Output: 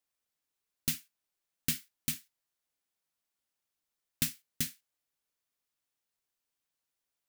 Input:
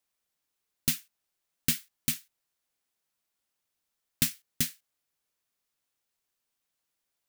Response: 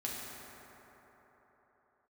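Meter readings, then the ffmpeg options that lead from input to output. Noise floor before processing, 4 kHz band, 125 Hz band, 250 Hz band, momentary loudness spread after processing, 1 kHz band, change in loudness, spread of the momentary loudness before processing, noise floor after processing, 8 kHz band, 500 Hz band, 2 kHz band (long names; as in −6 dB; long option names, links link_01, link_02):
−84 dBFS, −4.5 dB, −4.0 dB, −4.5 dB, 3 LU, −4.5 dB, −4.5 dB, 3 LU, below −85 dBFS, −4.5 dB, −4.5 dB, −4.5 dB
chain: -filter_complex "[0:a]asplit=2[link_01][link_02];[1:a]atrim=start_sample=2205,atrim=end_sample=3969,asetrate=52920,aresample=44100[link_03];[link_02][link_03]afir=irnorm=-1:irlink=0,volume=-10dB[link_04];[link_01][link_04]amix=inputs=2:normalize=0,volume=-6dB"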